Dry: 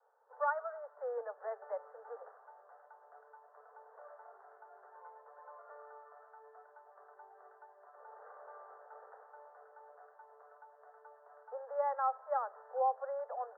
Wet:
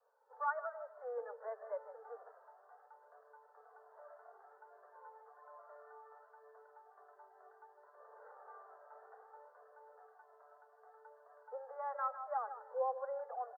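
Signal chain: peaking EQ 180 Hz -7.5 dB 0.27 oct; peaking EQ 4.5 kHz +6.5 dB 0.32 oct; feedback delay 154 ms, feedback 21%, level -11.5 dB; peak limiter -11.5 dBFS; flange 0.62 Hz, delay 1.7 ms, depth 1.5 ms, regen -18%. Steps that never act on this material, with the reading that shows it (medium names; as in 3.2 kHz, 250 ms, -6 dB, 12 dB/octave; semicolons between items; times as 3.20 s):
peaking EQ 180 Hz: input has nothing below 380 Hz; peaking EQ 4.5 kHz: input has nothing above 1.8 kHz; peak limiter -11.5 dBFS: peak at its input -22.5 dBFS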